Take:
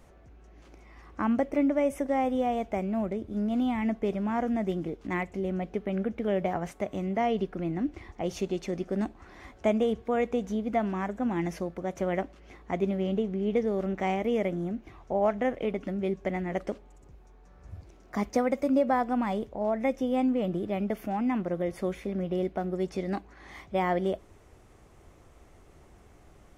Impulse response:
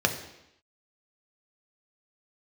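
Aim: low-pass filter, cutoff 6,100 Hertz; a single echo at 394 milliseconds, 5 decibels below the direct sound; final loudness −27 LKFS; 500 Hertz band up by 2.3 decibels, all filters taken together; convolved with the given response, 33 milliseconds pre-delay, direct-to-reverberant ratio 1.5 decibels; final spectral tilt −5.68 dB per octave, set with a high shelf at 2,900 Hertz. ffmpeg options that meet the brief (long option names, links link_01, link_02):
-filter_complex "[0:a]lowpass=6100,equalizer=frequency=500:width_type=o:gain=3,highshelf=frequency=2900:gain=-6,aecho=1:1:394:0.562,asplit=2[link_01][link_02];[1:a]atrim=start_sample=2205,adelay=33[link_03];[link_02][link_03]afir=irnorm=-1:irlink=0,volume=-14dB[link_04];[link_01][link_04]amix=inputs=2:normalize=0,volume=-2.5dB"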